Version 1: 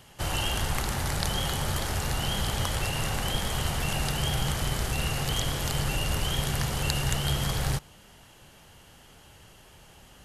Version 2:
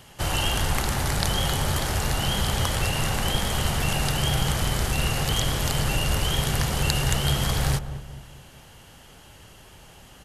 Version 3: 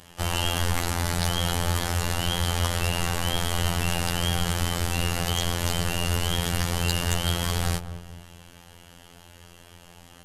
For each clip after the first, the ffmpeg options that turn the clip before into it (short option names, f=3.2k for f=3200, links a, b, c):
-filter_complex "[0:a]asplit=2[a][b];[b]adelay=215,lowpass=f=880:p=1,volume=-10.5dB,asplit=2[c][d];[d]adelay=215,lowpass=f=880:p=1,volume=0.47,asplit=2[e][f];[f]adelay=215,lowpass=f=880:p=1,volume=0.47,asplit=2[g][h];[h]adelay=215,lowpass=f=880:p=1,volume=0.47,asplit=2[i][j];[j]adelay=215,lowpass=f=880:p=1,volume=0.47[k];[a][c][e][g][i][k]amix=inputs=6:normalize=0,volume=4dB"
-af "acontrast=67,afftfilt=real='hypot(re,im)*cos(PI*b)':imag='0':win_size=2048:overlap=0.75,volume=-4dB"